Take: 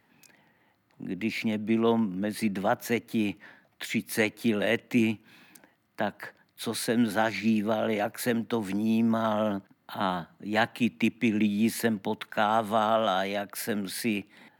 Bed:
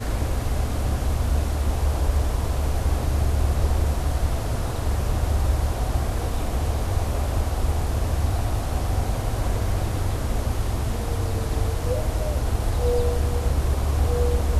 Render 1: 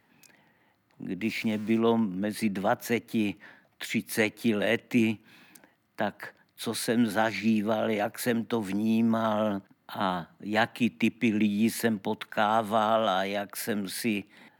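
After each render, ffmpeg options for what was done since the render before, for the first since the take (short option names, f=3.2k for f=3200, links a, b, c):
-filter_complex "[0:a]asplit=3[a][b][c];[a]afade=t=out:st=1.23:d=0.02[d];[b]aeval=exprs='val(0)*gte(abs(val(0)),0.0075)':c=same,afade=t=in:st=1.23:d=0.02,afade=t=out:st=1.77:d=0.02[e];[c]afade=t=in:st=1.77:d=0.02[f];[d][e][f]amix=inputs=3:normalize=0"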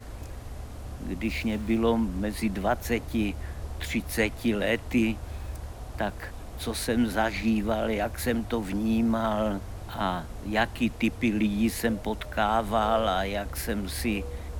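-filter_complex "[1:a]volume=-15dB[a];[0:a][a]amix=inputs=2:normalize=0"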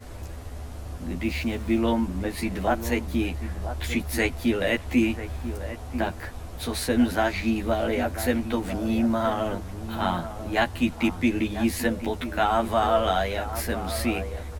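-filter_complex "[0:a]asplit=2[a][b];[b]adelay=12,volume=-2.5dB[c];[a][c]amix=inputs=2:normalize=0,asplit=2[d][e];[e]adelay=991.3,volume=-11dB,highshelf=f=4k:g=-22.3[f];[d][f]amix=inputs=2:normalize=0"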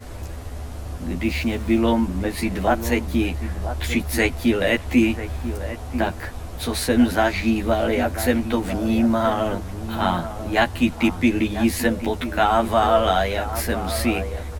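-af "volume=4.5dB"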